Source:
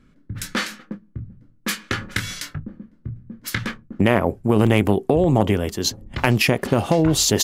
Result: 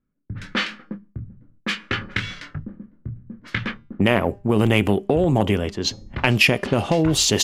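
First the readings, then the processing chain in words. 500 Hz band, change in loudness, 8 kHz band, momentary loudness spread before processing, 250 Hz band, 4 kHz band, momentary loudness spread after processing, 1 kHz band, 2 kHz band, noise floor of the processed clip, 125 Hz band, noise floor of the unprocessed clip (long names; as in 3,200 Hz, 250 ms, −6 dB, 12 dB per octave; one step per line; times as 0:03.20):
−1.5 dB, −0.5 dB, −2.0 dB, 19 LU, −1.5 dB, +1.5 dB, 20 LU, −1.5 dB, +2.0 dB, −58 dBFS, −1.5 dB, −55 dBFS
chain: low-pass that shuts in the quiet parts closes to 1,600 Hz, open at −12.5 dBFS
noise gate with hold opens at −44 dBFS
tuned comb filter 200 Hz, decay 0.43 s, harmonics all, mix 30%
in parallel at −10 dB: soft clipping −19 dBFS, distortion −7 dB
on the sum: dynamic equaliser 2,800 Hz, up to +7 dB, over −38 dBFS, Q 1.7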